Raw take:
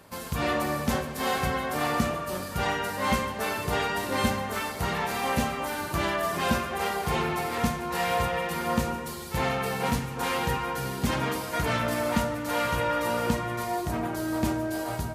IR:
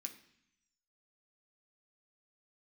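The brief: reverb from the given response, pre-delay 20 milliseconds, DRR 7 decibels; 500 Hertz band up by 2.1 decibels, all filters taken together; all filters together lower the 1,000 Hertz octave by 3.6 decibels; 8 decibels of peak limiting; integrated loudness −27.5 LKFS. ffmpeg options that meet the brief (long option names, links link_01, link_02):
-filter_complex "[0:a]equalizer=frequency=500:width_type=o:gain=4.5,equalizer=frequency=1000:width_type=o:gain=-6.5,alimiter=limit=-19dB:level=0:latency=1,asplit=2[link_01][link_02];[1:a]atrim=start_sample=2205,adelay=20[link_03];[link_02][link_03]afir=irnorm=-1:irlink=0,volume=-2dB[link_04];[link_01][link_04]amix=inputs=2:normalize=0,volume=1.5dB"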